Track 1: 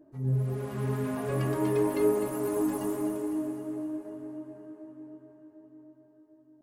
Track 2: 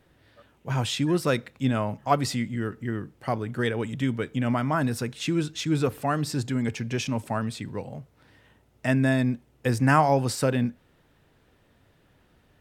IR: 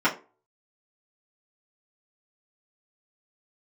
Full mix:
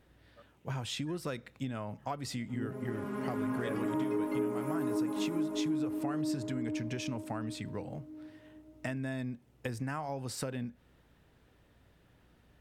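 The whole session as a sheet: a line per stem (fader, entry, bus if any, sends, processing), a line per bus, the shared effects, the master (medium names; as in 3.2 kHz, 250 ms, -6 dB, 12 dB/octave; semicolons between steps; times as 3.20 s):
-11.0 dB, 2.35 s, send -8 dB, none
-4.0 dB, 0.00 s, no send, compression 10:1, threshold -29 dBFS, peak gain reduction 15 dB; hum 60 Hz, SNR 30 dB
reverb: on, RT60 0.35 s, pre-delay 3 ms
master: compression 4:1, threshold -30 dBFS, peak gain reduction 8.5 dB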